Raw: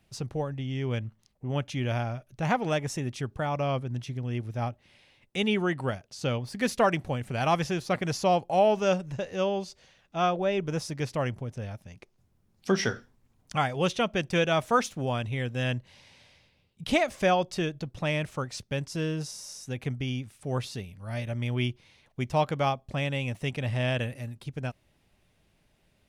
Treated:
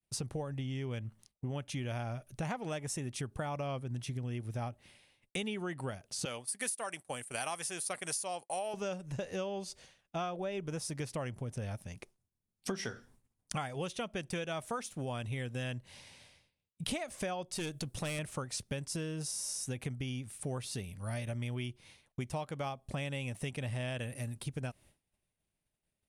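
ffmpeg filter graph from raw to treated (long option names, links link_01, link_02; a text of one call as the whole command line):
ffmpeg -i in.wav -filter_complex "[0:a]asettb=1/sr,asplit=3[link_01][link_02][link_03];[link_01]atrim=end=6.254[link_04];[link_02]atrim=start=6.25:end=8.74,asetpts=PTS-STARTPTS,afade=type=in:duration=0.004:curve=qsin,afade=type=out:start_time=2.486:duration=0.004:curve=qsin,highpass=frequency=820:poles=1,agate=range=-33dB:threshold=-42dB:ratio=3:release=100:detection=peak,equalizer=frequency=9300:width_type=o:width=0.64:gain=14.5[link_05];[link_03]atrim=start=8.736[link_06];[link_04][link_05]acrossfade=duration=0.004:curve1=hsin:curve2=qsin[link_07];[link_07][link_06]acrossfade=duration=0.004:curve1=qsin:curve2=hsin,asettb=1/sr,asplit=3[link_08][link_09][link_10];[link_08]atrim=end=17.554[link_11];[link_09]atrim=start=17.55:end=18.19,asetpts=PTS-STARTPTS,afade=type=in:duration=0.004:curve=qsin,afade=type=out:start_time=0.636:duration=0.004:curve=qsin,highshelf=frequency=4100:gain=9,aeval=exprs='(tanh(25.1*val(0)+0.25)-tanh(0.25))/25.1':channel_layout=same[link_12];[link_10]atrim=start=18.186[link_13];[link_11][link_12]acrossfade=duration=0.004:curve1=hsin:curve2=qsin[link_14];[link_14][link_13]acrossfade=duration=0.004:curve1=qsin:curve2=hsin,agate=range=-33dB:threshold=-53dB:ratio=3:detection=peak,equalizer=frequency=9400:width=1.7:gain=13,acompressor=threshold=-35dB:ratio=12,volume=1dB" out.wav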